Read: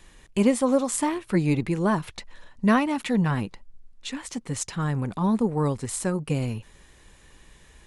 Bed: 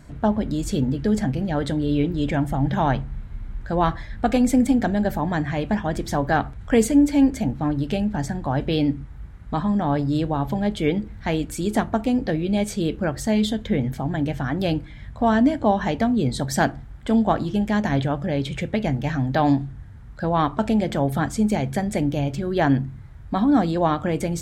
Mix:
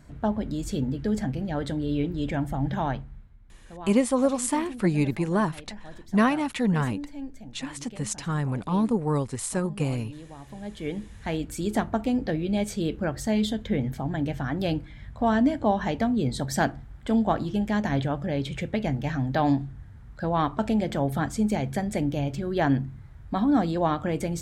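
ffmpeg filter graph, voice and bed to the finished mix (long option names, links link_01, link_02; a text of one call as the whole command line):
ffmpeg -i stem1.wav -i stem2.wav -filter_complex "[0:a]adelay=3500,volume=-1dB[link_01];[1:a]volume=11dB,afade=type=out:start_time=2.73:duration=0.63:silence=0.177828,afade=type=in:start_time=10.45:duration=1.14:silence=0.149624[link_02];[link_01][link_02]amix=inputs=2:normalize=0" out.wav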